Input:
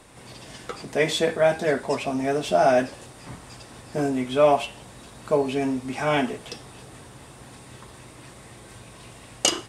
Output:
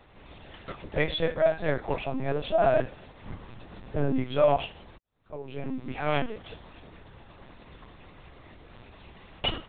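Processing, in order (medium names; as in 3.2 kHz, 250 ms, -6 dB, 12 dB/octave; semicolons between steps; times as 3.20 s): 3.23–4.21 s: bass shelf 280 Hz +7.5 dB; 4.98–5.84 s: fade in quadratic; LPC vocoder at 8 kHz pitch kept; trim -4 dB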